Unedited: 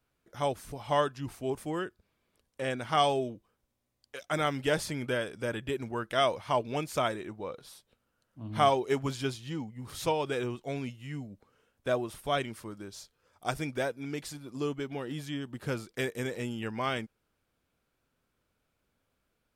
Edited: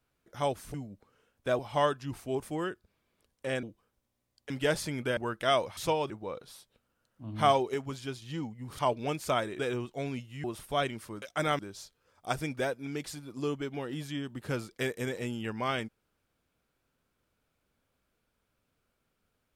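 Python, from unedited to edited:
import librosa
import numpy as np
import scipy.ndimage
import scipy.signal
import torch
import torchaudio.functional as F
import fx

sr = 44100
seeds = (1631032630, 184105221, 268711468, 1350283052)

y = fx.edit(x, sr, fx.cut(start_s=2.78, length_s=0.51),
    fx.move(start_s=4.16, length_s=0.37, to_s=12.77),
    fx.cut(start_s=5.2, length_s=0.67),
    fx.swap(start_s=6.47, length_s=0.8, other_s=9.96, other_length_s=0.33),
    fx.clip_gain(start_s=8.91, length_s=0.48, db=-5.5),
    fx.move(start_s=11.14, length_s=0.85, to_s=0.74), tone=tone)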